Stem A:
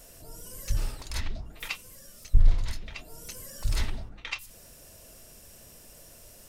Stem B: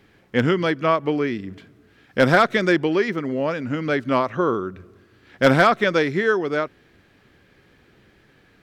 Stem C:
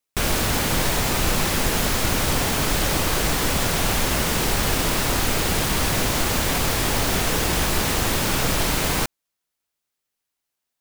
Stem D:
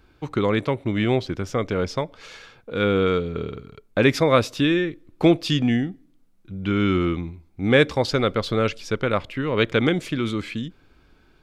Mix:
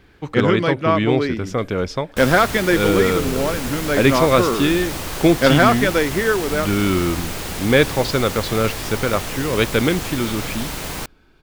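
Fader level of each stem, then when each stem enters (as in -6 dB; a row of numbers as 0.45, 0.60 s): -18.5, +1.0, -6.0, +2.0 dB; 1.10, 0.00, 2.00, 0.00 s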